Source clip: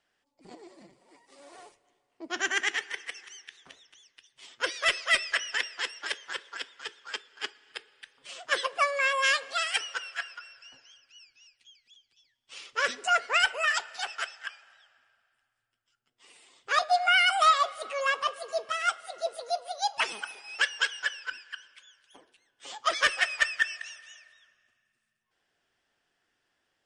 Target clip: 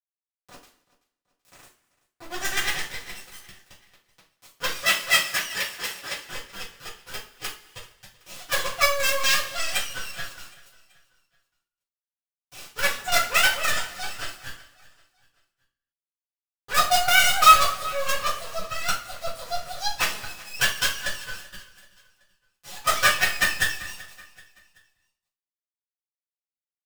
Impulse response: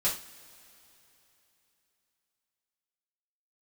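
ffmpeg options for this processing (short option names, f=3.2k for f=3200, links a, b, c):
-filter_complex "[0:a]acrusher=bits=4:dc=4:mix=0:aa=0.000001,asettb=1/sr,asplit=3[a][b][c];[a]atrim=end=4.784[d];[b]atrim=start=4.78:end=6.21,asetpts=PTS-STARTPTS,afade=t=in:d=0.004:c=qsin,afade=t=out:st=1.426:d=0.004:c=qsin,highpass=f=190:p=1[e];[c]atrim=start=6.206[f];[d][e]acrossfade=d=0.004:c1=hsin:c2=qsin[g];[g][f]acrossfade=d=0.004:c1=qsin:c2=hsin,aecho=1:1:382|764|1146:0.0944|0.0415|0.0183[h];[1:a]atrim=start_sample=2205,afade=t=out:st=0.35:d=0.01,atrim=end_sample=15876[i];[h][i]afir=irnorm=-1:irlink=0,volume=-3dB"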